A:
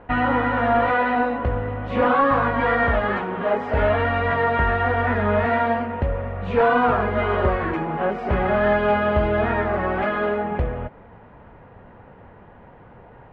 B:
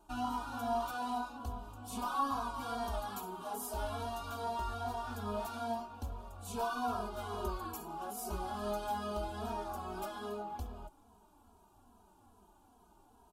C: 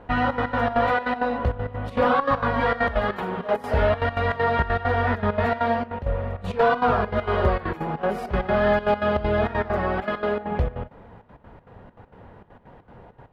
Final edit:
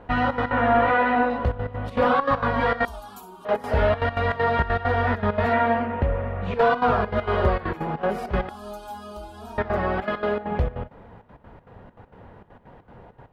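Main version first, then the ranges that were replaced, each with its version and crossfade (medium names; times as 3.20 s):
C
0.51–1.30 s: from A
2.85–3.45 s: from B
5.53–6.54 s: from A
8.49–9.58 s: from B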